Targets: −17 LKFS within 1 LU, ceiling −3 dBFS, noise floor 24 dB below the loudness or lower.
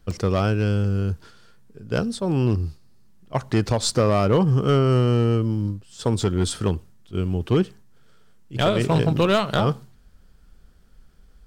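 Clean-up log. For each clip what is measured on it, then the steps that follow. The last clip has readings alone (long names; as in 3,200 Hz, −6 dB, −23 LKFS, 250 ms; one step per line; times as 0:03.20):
share of clipped samples 0.7%; peaks flattened at −12.0 dBFS; number of dropouts 1; longest dropout 2.4 ms; integrated loudness −22.5 LKFS; sample peak −12.0 dBFS; target loudness −17.0 LKFS
→ clipped peaks rebuilt −12 dBFS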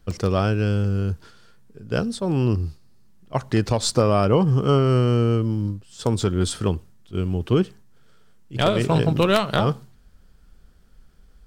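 share of clipped samples 0.0%; number of dropouts 1; longest dropout 2.4 ms
→ repair the gap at 0:00.11, 2.4 ms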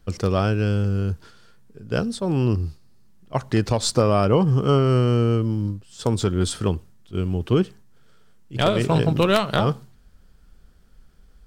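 number of dropouts 0; integrated loudness −22.0 LKFS; sample peak −3.0 dBFS; target loudness −17.0 LKFS
→ level +5 dB
brickwall limiter −3 dBFS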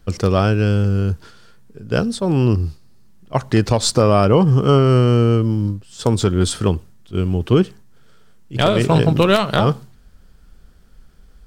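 integrated loudness −17.0 LKFS; sample peak −3.0 dBFS; background noise floor −48 dBFS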